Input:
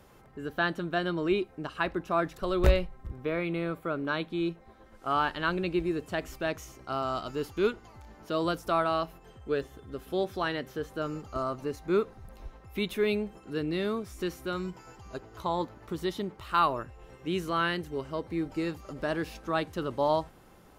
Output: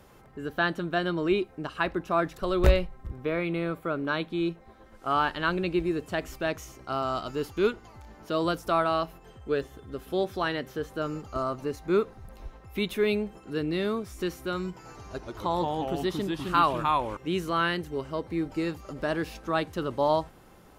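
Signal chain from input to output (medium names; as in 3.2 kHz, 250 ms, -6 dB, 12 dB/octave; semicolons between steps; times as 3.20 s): 14.73–17.17 s: ever faster or slower copies 84 ms, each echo -2 st, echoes 2; trim +2 dB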